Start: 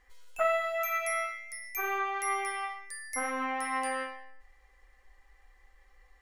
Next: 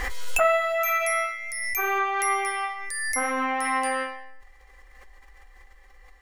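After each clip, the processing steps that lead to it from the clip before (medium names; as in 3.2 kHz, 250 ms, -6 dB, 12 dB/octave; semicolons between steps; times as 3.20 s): swell ahead of each attack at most 26 dB/s; trim +6.5 dB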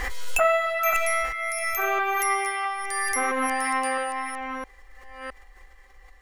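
chunks repeated in reverse 663 ms, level -6.5 dB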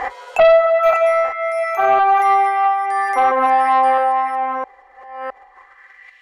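band-pass sweep 750 Hz -> 2.8 kHz, 5.42–6.21 s; sine folder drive 6 dB, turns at -13.5 dBFS; trim +7 dB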